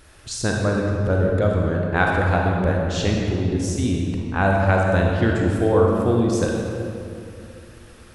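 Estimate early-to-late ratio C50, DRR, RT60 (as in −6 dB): −0.5 dB, −1.5 dB, 2.7 s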